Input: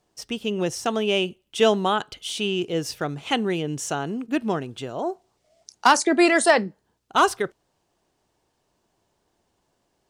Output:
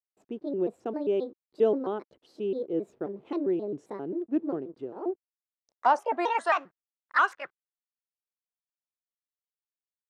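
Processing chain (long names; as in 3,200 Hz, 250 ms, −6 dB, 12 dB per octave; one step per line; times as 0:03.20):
pitch shifter gated in a rhythm +5.5 semitones, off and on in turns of 133 ms
slack as between gear wheels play −39 dBFS
band-pass filter sweep 360 Hz → 1,500 Hz, 0:05.26–0:06.72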